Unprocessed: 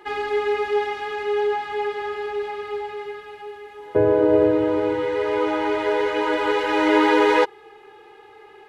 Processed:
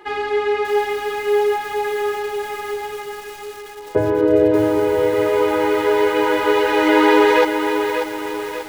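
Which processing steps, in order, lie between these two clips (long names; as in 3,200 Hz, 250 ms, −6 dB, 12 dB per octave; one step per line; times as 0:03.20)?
0:03.97–0:04.51: parametric band 390 Hz → 1,300 Hz −12.5 dB 0.39 octaves
feedback echo at a low word length 589 ms, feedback 55%, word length 6 bits, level −6.5 dB
level +3 dB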